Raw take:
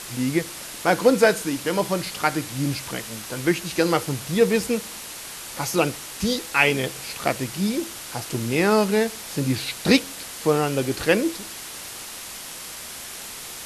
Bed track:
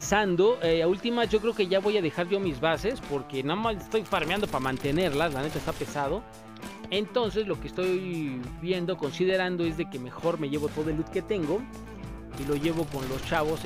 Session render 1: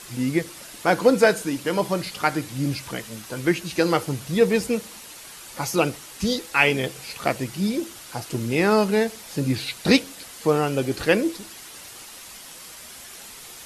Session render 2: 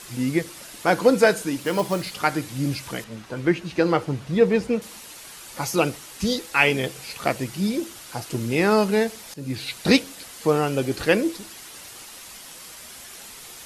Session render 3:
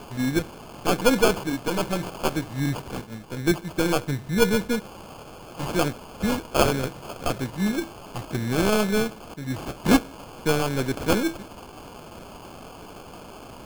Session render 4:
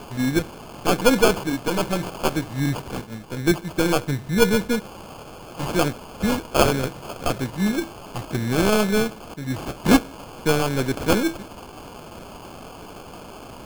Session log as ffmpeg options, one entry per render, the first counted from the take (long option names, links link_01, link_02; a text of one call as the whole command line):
ffmpeg -i in.wav -af "afftdn=noise_reduction=7:noise_floor=-37" out.wav
ffmpeg -i in.wav -filter_complex "[0:a]asplit=3[link_01][link_02][link_03];[link_01]afade=type=out:start_time=1.58:duration=0.02[link_04];[link_02]acrusher=bits=5:mode=log:mix=0:aa=0.000001,afade=type=in:start_time=1.58:duration=0.02,afade=type=out:start_time=2.14:duration=0.02[link_05];[link_03]afade=type=in:start_time=2.14:duration=0.02[link_06];[link_04][link_05][link_06]amix=inputs=3:normalize=0,asettb=1/sr,asplit=3[link_07][link_08][link_09];[link_07]atrim=end=3.044[link_10];[link_08]atrim=start=3.04:end=4.82,asetpts=PTS-STARTPTS,afade=type=in:duration=0.004:curve=qsin,afade=type=out:start_time=1.776:duration=0.004:curve=qsin,aemphasis=mode=reproduction:type=75fm[link_11];[link_09]atrim=start=4.816[link_12];[link_10][link_11]acrossfade=duration=0.004:curve1=hsin:curve2=qsin[link_13];[link_13][link_12]acrossfade=duration=0.004:curve1=qsin:curve2=hsin,asplit=2[link_14][link_15];[link_14]atrim=end=9.34,asetpts=PTS-STARTPTS,afade=type=out:start_time=9.336:duration=0.004:curve=hsin:silence=0.158489[link_16];[link_15]atrim=start=9.34,asetpts=PTS-STARTPTS,afade=type=in:duration=0.4:silence=0.158489[link_17];[link_16][link_17]concat=n=2:v=0:a=1" out.wav
ffmpeg -i in.wav -filter_complex "[0:a]acrossover=split=400|1800[link_01][link_02][link_03];[link_02]aeval=exprs='max(val(0),0)':channel_layout=same[link_04];[link_01][link_04][link_03]amix=inputs=3:normalize=0,acrusher=samples=23:mix=1:aa=0.000001" out.wav
ffmpeg -i in.wav -af "volume=2.5dB" out.wav